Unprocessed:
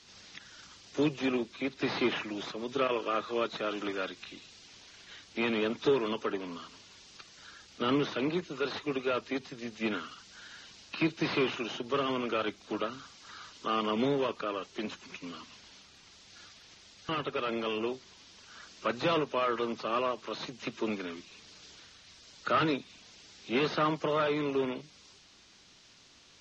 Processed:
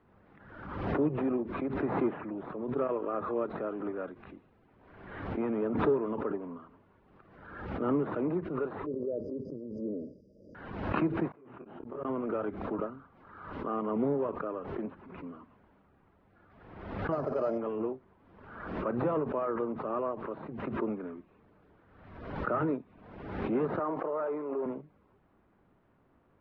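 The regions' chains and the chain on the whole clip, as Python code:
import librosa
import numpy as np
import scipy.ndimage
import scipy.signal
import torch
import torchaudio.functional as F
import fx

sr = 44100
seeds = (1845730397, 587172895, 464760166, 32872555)

y = fx.chain(x, sr, fx.brickwall_bandstop(low_hz=630.0, high_hz=4700.0),
    fx.tilt_eq(slope=2.5),
    fx.sustainer(db_per_s=22.0), at=(8.86, 10.55))
y = fx.chain(y, sr, fx.high_shelf(hz=5500.0, db=-4.5),
    fx.gate_flip(shuts_db=-25.0, range_db=-31),
    fx.detune_double(cents=30), at=(11.28, 12.05))
y = fx.chain(y, sr, fx.peak_eq(hz=630.0, db=13.0, octaves=0.33),
    fx.resample_bad(factor=8, down='filtered', up='zero_stuff'), at=(17.12, 17.58))
y = fx.chain(y, sr, fx.highpass(hz=420.0, slope=12),
    fx.high_shelf(hz=2600.0, db=-9.0),
    fx.sustainer(db_per_s=49.0), at=(23.79, 24.66))
y = scipy.signal.sosfilt(scipy.signal.bessel(4, 910.0, 'lowpass', norm='mag', fs=sr, output='sos'), y)
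y = fx.pre_swell(y, sr, db_per_s=51.0)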